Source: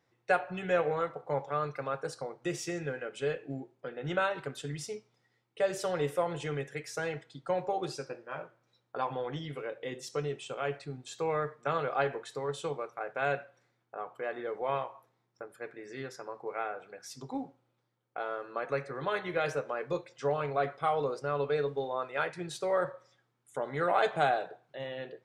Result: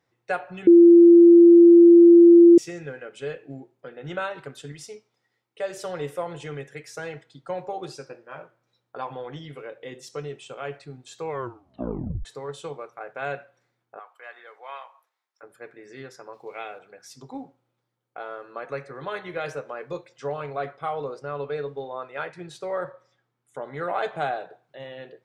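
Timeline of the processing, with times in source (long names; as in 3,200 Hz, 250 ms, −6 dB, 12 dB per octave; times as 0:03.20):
0:00.67–0:02.58: beep over 342 Hz −7.5 dBFS
0:04.72–0:05.77: parametric band 120 Hz −6.5 dB 2.1 octaves
0:11.28: tape stop 0.97 s
0:13.99–0:15.43: high-pass filter 1,100 Hz
0:16.33–0:16.79: high shelf with overshoot 2,200 Hz +10 dB, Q 1.5
0:20.71–0:24.50: high-shelf EQ 5,300 Hz −6.5 dB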